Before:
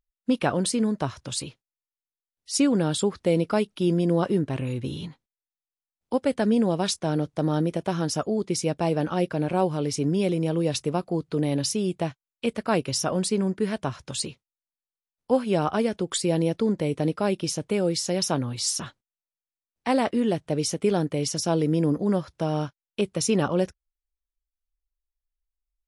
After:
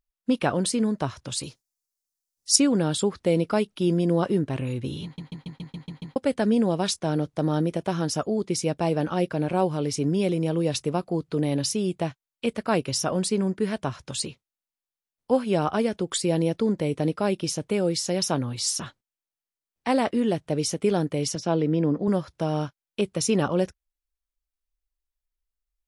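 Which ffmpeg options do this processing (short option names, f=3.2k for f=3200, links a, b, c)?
-filter_complex "[0:a]asettb=1/sr,asplit=3[a][b][c];[a]atrim=end=1.434[d];[b]atrim=start=1.43:end=2.56,asetpts=PTS-STARTPTS,afade=t=in:d=0.004:c=qsin,afade=t=out:st=1.126:d=0.004:c=qsin,highshelf=f=4.1k:t=q:w=1.5:g=10[e];[c]atrim=start=2.556[f];[d][e]acrossfade=d=0.004:c1=hsin:c2=qsin[g];[g][f]acrossfade=d=0.004:c1=qsin:c2=hsin,asettb=1/sr,asplit=3[h][i][j];[h]atrim=end=21.354[k];[i]atrim=start=21.35:end=22.08,asetpts=PTS-STARTPTS,afade=t=in:d=0.004:c=qsin,afade=t=out:st=0.726:d=0.004:c=qsin,highpass=110,lowpass=3.6k[l];[j]atrim=start=22.076[m];[k][l]acrossfade=d=0.004:c1=hsin:c2=qsin[n];[n][m]acrossfade=d=0.004:c1=qsin:c2=hsin,asplit=9[o][p][q][r][s][t][u][v][w];[o]atrim=end=5.182[x];[p]atrim=start=5.038:end=5.182[y];[q]atrim=start=5.038:end=5.182[z];[r]atrim=start=5.038:end=5.182[aa];[s]atrim=start=5.038:end=5.182[ab];[t]atrim=start=5.038:end=5.182[ac];[u]atrim=start=5.038:end=5.182[ad];[v]atrim=start=5.038:end=5.182[ae];[w]atrim=start=6.158[af];[x][y]acrossfade=d=0.004:c1=hsin:c2=hsin[ag];[ag][z]acrossfade=d=0.004:c1=hsin:c2=hsin[ah];[ah][aa]acrossfade=d=0.004:c1=hsin:c2=hsin[ai];[ai][ab]acrossfade=d=0.004:c1=hsin:c2=hsin[aj];[aj][ac]acrossfade=d=0.004:c1=hsin:c2=hsin[ak];[ak][ad]acrossfade=d=0.004:c1=hsin:c2=hsin[al];[al][ae]acrossfade=d=0.004:c1=hsin:c2=hsin[am];[am][af]acrossfade=d=0.004:c1=hsin:c2=hsin"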